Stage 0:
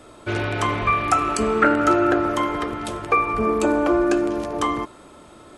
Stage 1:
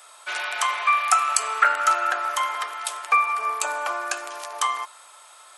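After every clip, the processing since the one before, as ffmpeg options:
ffmpeg -i in.wav -af "highpass=frequency=810:width=0.5412,highpass=frequency=810:width=1.3066,highshelf=frequency=5500:gain=11.5" out.wav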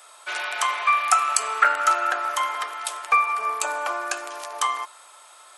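ffmpeg -i in.wav -af "aeval=exprs='0.794*(cos(1*acos(clip(val(0)/0.794,-1,1)))-cos(1*PI/2))+0.00794*(cos(7*acos(clip(val(0)/0.794,-1,1)))-cos(7*PI/2))':channel_layout=same,lowshelf=frequency=380:gain=5.5" out.wav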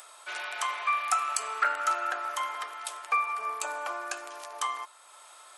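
ffmpeg -i in.wav -af "acompressor=mode=upward:threshold=-37dB:ratio=2.5,asoftclip=type=tanh:threshold=-4.5dB,volume=-7.5dB" out.wav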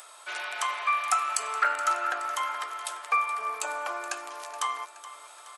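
ffmpeg -i in.wav -af "aecho=1:1:423|846|1269|1692|2115:0.178|0.0978|0.0538|0.0296|0.0163,volume=1.5dB" out.wav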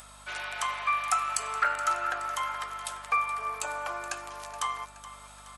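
ffmpeg -i in.wav -af "aeval=exprs='val(0)+0.002*(sin(2*PI*50*n/s)+sin(2*PI*2*50*n/s)/2+sin(2*PI*3*50*n/s)/3+sin(2*PI*4*50*n/s)/4+sin(2*PI*5*50*n/s)/5)':channel_layout=same,volume=-1.5dB" out.wav

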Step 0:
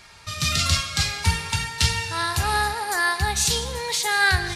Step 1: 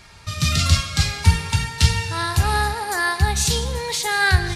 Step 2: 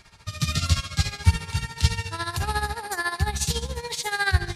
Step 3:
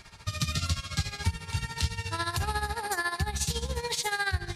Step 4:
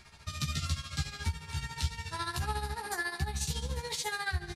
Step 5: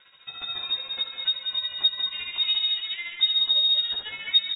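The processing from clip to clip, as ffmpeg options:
ffmpeg -i in.wav -af "lowshelf=frequency=350:gain=8" out.wav
ffmpeg -i in.wav -af "tremolo=f=14:d=0.75,volume=-3dB" out.wav
ffmpeg -i in.wav -af "acompressor=threshold=-29dB:ratio=4,volume=2dB" out.wav
ffmpeg -i in.wav -filter_complex "[0:a]asplit=2[link_01][link_02];[link_02]adelay=14,volume=-2.5dB[link_03];[link_01][link_03]amix=inputs=2:normalize=0,volume=-6.5dB" out.wav
ffmpeg -i in.wav -af "asubboost=boost=11:cutoff=77,aecho=1:1:186:0.473,lowpass=frequency=3200:width_type=q:width=0.5098,lowpass=frequency=3200:width_type=q:width=0.6013,lowpass=frequency=3200:width_type=q:width=0.9,lowpass=frequency=3200:width_type=q:width=2.563,afreqshift=-3800" out.wav

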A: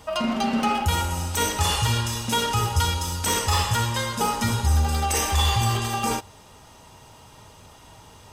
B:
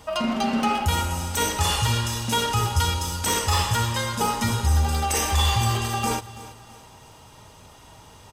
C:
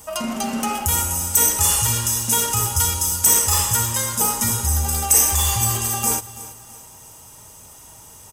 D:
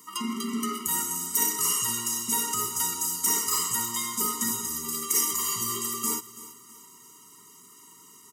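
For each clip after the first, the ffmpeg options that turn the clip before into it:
ffmpeg -i in.wav -af "aecho=1:1:331|662|993:0.141|0.0565|0.0226" out.wav
ffmpeg -i in.wav -af "acontrast=72,aexciter=amount=8:drive=1.4:freq=5900,volume=-8dB" out.wav
ffmpeg -i in.wav -af "highpass=frequency=190:width=0.5412,highpass=frequency=190:width=1.3066,afftfilt=real='re*eq(mod(floor(b*sr/1024/460),2),0)':imag='im*eq(mod(floor(b*sr/1024/460),2),0)':win_size=1024:overlap=0.75,volume=-3.5dB" out.wav

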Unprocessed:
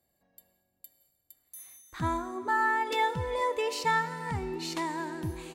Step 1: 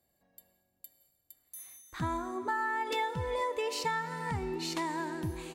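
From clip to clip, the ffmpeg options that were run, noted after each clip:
ffmpeg -i in.wav -af "acompressor=threshold=-29dB:ratio=6" out.wav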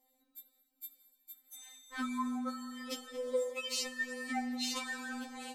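ffmpeg -i in.wav -af "afftfilt=real='re*3.46*eq(mod(b,12),0)':imag='im*3.46*eq(mod(b,12),0)':win_size=2048:overlap=0.75,volume=4.5dB" out.wav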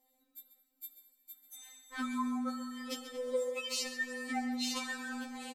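ffmpeg -i in.wav -filter_complex "[0:a]asplit=2[link_01][link_02];[link_02]adelay=134.1,volume=-11dB,highshelf=frequency=4000:gain=-3.02[link_03];[link_01][link_03]amix=inputs=2:normalize=0" out.wav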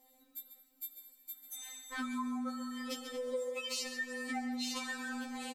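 ffmpeg -i in.wav -af "acompressor=threshold=-52dB:ratio=2,volume=8dB" out.wav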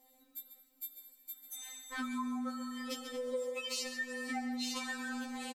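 ffmpeg -i in.wav -af "aecho=1:1:520:0.0891" out.wav

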